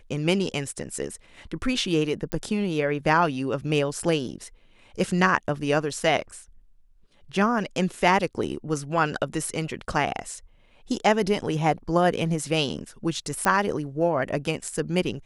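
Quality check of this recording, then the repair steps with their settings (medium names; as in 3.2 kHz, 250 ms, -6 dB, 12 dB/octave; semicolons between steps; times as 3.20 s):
2.32 s: pop -16 dBFS
13.45 s: pop -9 dBFS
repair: de-click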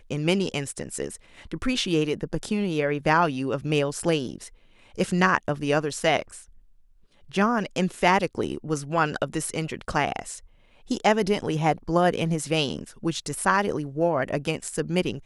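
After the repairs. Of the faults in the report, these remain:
nothing left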